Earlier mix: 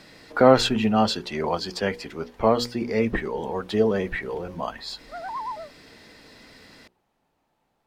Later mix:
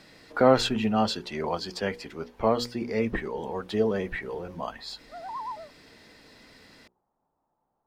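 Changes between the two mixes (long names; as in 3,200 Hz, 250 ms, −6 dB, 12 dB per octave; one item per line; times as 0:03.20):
speech −4.0 dB
background: add transistor ladder low-pass 1,300 Hz, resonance 35%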